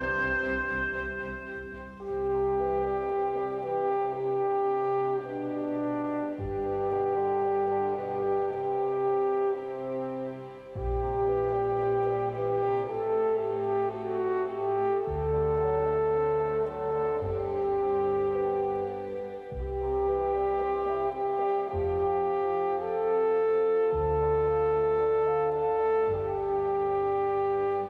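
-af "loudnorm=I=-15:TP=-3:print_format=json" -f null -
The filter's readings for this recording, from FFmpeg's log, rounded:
"input_i" : "-28.4",
"input_tp" : "-16.8",
"input_lra" : "3.3",
"input_thresh" : "-38.5",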